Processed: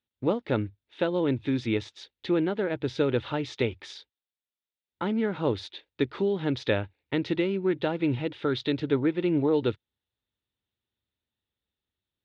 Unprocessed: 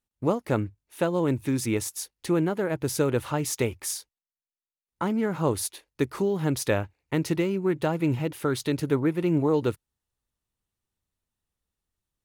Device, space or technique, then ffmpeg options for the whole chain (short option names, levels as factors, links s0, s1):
guitar cabinet: -af "highpass=82,equalizer=f=160:t=q:w=4:g=-7,equalizer=f=710:t=q:w=4:g=-4,equalizer=f=1100:t=q:w=4:g=-7,equalizer=f=3600:t=q:w=4:g=9,lowpass=f=3800:w=0.5412,lowpass=f=3800:w=1.3066"